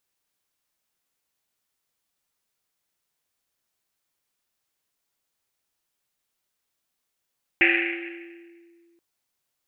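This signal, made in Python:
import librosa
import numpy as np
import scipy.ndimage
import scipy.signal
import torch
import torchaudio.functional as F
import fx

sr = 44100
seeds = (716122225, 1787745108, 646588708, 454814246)

y = fx.risset_drum(sr, seeds[0], length_s=1.38, hz=340.0, decay_s=2.32, noise_hz=2200.0, noise_width_hz=1000.0, noise_pct=65)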